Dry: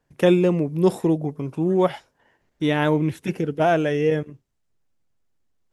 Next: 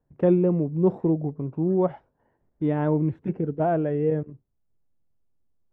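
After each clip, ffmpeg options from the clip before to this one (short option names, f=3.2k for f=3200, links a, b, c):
-af "lowpass=1k,lowshelf=f=230:g=5.5,volume=-4.5dB"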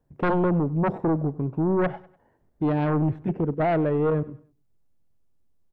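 -af "aeval=exprs='0.335*sin(PI/2*2.82*val(0)/0.335)':c=same,aecho=1:1:98|196|294:0.0891|0.033|0.0122,volume=-9dB"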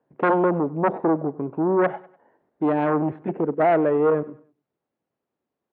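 -af "highpass=310,lowpass=2.2k,volume=5.5dB"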